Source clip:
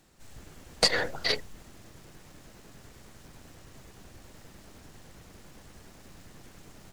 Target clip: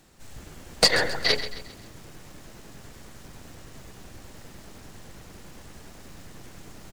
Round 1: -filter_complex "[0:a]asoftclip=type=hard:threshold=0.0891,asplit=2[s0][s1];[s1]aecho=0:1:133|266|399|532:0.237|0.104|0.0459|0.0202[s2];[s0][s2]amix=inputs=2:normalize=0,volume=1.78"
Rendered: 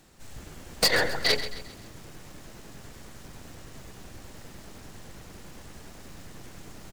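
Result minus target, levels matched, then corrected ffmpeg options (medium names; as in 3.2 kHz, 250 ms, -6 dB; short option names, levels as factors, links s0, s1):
hard clipper: distortion +12 dB
-filter_complex "[0:a]asoftclip=type=hard:threshold=0.237,asplit=2[s0][s1];[s1]aecho=0:1:133|266|399|532:0.237|0.104|0.0459|0.0202[s2];[s0][s2]amix=inputs=2:normalize=0,volume=1.78"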